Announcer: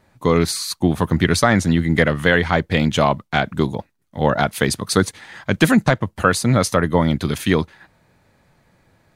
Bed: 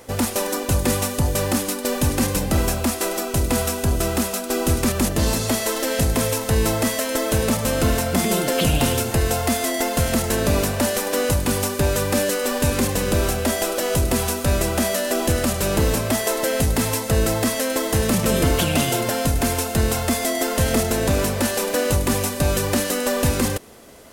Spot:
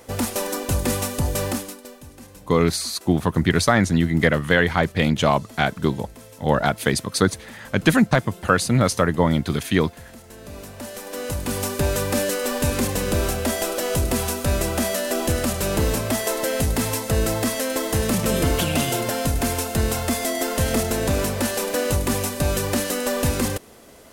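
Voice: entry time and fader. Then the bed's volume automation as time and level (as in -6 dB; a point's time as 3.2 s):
2.25 s, -2.0 dB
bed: 1.48 s -2.5 dB
2.02 s -23 dB
10.23 s -23 dB
11.71 s -2 dB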